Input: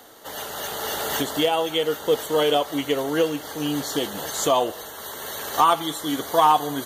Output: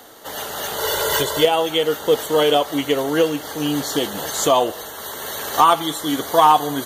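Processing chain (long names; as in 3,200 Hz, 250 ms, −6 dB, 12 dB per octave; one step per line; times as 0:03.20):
0:00.78–0:01.45: comb filter 2 ms, depth 87%
level +4 dB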